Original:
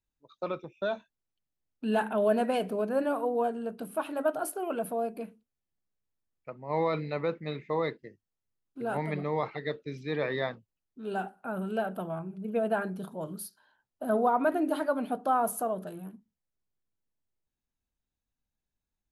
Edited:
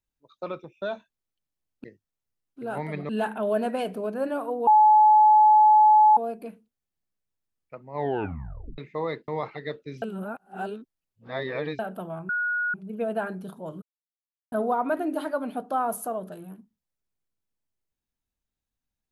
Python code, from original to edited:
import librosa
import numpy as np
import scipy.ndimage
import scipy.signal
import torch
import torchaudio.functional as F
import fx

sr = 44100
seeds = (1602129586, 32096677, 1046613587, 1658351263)

y = fx.edit(x, sr, fx.bleep(start_s=3.42, length_s=1.5, hz=855.0, db=-12.5),
    fx.tape_stop(start_s=6.7, length_s=0.83),
    fx.move(start_s=8.03, length_s=1.25, to_s=1.84),
    fx.reverse_span(start_s=10.02, length_s=1.77),
    fx.insert_tone(at_s=12.29, length_s=0.45, hz=1450.0, db=-23.5),
    fx.silence(start_s=13.37, length_s=0.7), tone=tone)